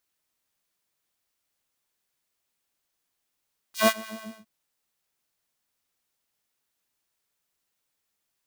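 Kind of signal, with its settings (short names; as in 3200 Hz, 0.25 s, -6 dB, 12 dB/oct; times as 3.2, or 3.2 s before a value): synth patch with filter wobble A3, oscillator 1 square, oscillator 2 saw, interval 0 st, sub -14 dB, noise -12.5 dB, filter highpass, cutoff 270 Hz, Q 1.2, filter envelope 3.5 oct, filter decay 0.12 s, attack 0.134 s, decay 0.06 s, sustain -21 dB, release 0.36 s, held 0.35 s, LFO 6.9 Hz, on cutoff 1.2 oct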